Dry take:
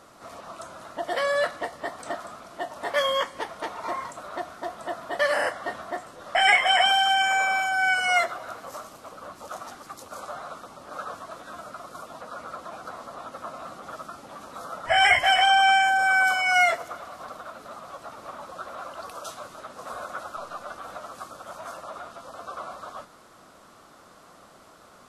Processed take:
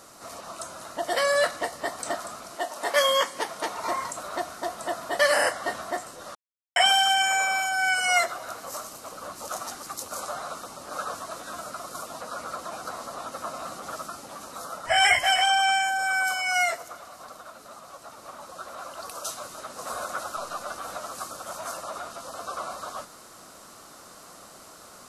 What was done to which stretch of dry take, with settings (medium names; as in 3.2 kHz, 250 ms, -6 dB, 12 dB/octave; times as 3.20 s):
2.55–3.75 s: high-pass 320 Hz -> 100 Hz
6.35–6.76 s: mute
whole clip: tone controls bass -1 dB, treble +10 dB; band-stop 3.4 kHz, Q 18; gain riding within 4 dB 2 s; trim -1.5 dB